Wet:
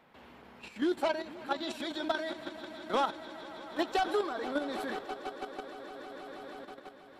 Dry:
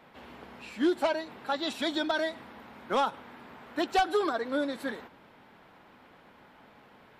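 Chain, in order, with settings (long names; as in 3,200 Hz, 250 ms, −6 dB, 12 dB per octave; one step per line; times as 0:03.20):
echo that builds up and dies away 160 ms, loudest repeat 5, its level −16.5 dB
output level in coarse steps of 9 dB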